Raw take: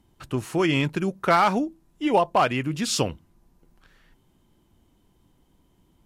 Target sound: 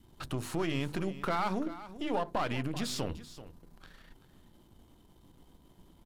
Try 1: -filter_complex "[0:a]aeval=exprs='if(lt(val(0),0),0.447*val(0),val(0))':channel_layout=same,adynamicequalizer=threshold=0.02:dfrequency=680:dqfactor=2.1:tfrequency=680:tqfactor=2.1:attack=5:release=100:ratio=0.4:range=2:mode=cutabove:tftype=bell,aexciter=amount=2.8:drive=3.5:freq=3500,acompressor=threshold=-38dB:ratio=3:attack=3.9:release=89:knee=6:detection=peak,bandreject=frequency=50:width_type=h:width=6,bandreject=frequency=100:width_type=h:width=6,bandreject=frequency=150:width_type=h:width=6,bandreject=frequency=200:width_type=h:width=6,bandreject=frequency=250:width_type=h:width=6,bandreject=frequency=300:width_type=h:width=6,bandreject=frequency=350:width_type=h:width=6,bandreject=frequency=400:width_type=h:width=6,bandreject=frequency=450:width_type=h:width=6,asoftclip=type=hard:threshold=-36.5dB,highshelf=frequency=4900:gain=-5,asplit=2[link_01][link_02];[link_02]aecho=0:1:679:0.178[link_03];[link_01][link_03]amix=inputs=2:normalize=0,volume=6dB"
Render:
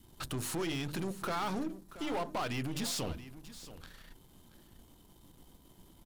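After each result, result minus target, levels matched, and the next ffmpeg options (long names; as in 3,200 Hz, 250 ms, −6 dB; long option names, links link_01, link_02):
hard clipping: distortion +23 dB; echo 294 ms late; 8,000 Hz band +6.5 dB
-filter_complex "[0:a]aeval=exprs='if(lt(val(0),0),0.447*val(0),val(0))':channel_layout=same,adynamicequalizer=threshold=0.02:dfrequency=680:dqfactor=2.1:tfrequency=680:tqfactor=2.1:attack=5:release=100:ratio=0.4:range=2:mode=cutabove:tftype=bell,aexciter=amount=2.8:drive=3.5:freq=3500,acompressor=threshold=-38dB:ratio=3:attack=3.9:release=89:knee=6:detection=peak,bandreject=frequency=50:width_type=h:width=6,bandreject=frequency=100:width_type=h:width=6,bandreject=frequency=150:width_type=h:width=6,bandreject=frequency=200:width_type=h:width=6,bandreject=frequency=250:width_type=h:width=6,bandreject=frequency=300:width_type=h:width=6,bandreject=frequency=350:width_type=h:width=6,bandreject=frequency=400:width_type=h:width=6,bandreject=frequency=450:width_type=h:width=6,asoftclip=type=hard:threshold=-27dB,highshelf=frequency=4900:gain=-5,asplit=2[link_01][link_02];[link_02]aecho=0:1:679:0.178[link_03];[link_01][link_03]amix=inputs=2:normalize=0,volume=6dB"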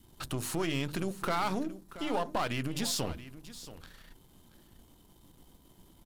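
echo 294 ms late; 8,000 Hz band +6.0 dB
-filter_complex "[0:a]aeval=exprs='if(lt(val(0),0),0.447*val(0),val(0))':channel_layout=same,adynamicequalizer=threshold=0.02:dfrequency=680:dqfactor=2.1:tfrequency=680:tqfactor=2.1:attack=5:release=100:ratio=0.4:range=2:mode=cutabove:tftype=bell,aexciter=amount=2.8:drive=3.5:freq=3500,acompressor=threshold=-38dB:ratio=3:attack=3.9:release=89:knee=6:detection=peak,bandreject=frequency=50:width_type=h:width=6,bandreject=frequency=100:width_type=h:width=6,bandreject=frequency=150:width_type=h:width=6,bandreject=frequency=200:width_type=h:width=6,bandreject=frequency=250:width_type=h:width=6,bandreject=frequency=300:width_type=h:width=6,bandreject=frequency=350:width_type=h:width=6,bandreject=frequency=400:width_type=h:width=6,bandreject=frequency=450:width_type=h:width=6,asoftclip=type=hard:threshold=-27dB,highshelf=frequency=4900:gain=-5,asplit=2[link_01][link_02];[link_02]aecho=0:1:385:0.178[link_03];[link_01][link_03]amix=inputs=2:normalize=0,volume=6dB"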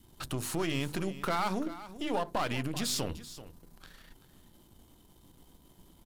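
8,000 Hz band +6.0 dB
-filter_complex "[0:a]aeval=exprs='if(lt(val(0),0),0.447*val(0),val(0))':channel_layout=same,adynamicequalizer=threshold=0.02:dfrequency=680:dqfactor=2.1:tfrequency=680:tqfactor=2.1:attack=5:release=100:ratio=0.4:range=2:mode=cutabove:tftype=bell,aexciter=amount=2.8:drive=3.5:freq=3500,acompressor=threshold=-38dB:ratio=3:attack=3.9:release=89:knee=6:detection=peak,bandreject=frequency=50:width_type=h:width=6,bandreject=frequency=100:width_type=h:width=6,bandreject=frequency=150:width_type=h:width=6,bandreject=frequency=200:width_type=h:width=6,bandreject=frequency=250:width_type=h:width=6,bandreject=frequency=300:width_type=h:width=6,bandreject=frequency=350:width_type=h:width=6,bandreject=frequency=400:width_type=h:width=6,bandreject=frequency=450:width_type=h:width=6,asoftclip=type=hard:threshold=-27dB,highshelf=frequency=4900:gain=-15,asplit=2[link_01][link_02];[link_02]aecho=0:1:385:0.178[link_03];[link_01][link_03]amix=inputs=2:normalize=0,volume=6dB"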